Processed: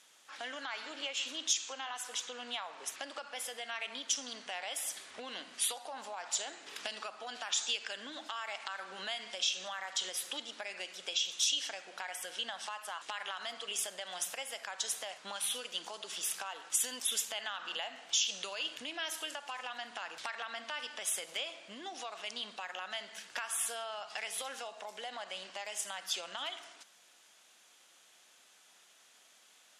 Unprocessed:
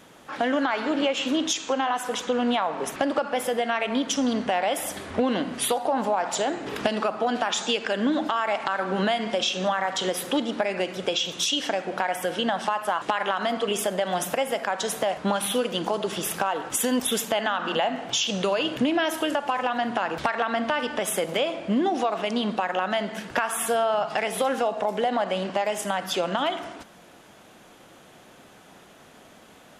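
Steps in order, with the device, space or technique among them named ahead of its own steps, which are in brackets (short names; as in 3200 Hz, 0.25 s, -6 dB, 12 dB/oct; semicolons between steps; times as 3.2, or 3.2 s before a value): piezo pickup straight into a mixer (LPF 7600 Hz 12 dB/oct; differentiator)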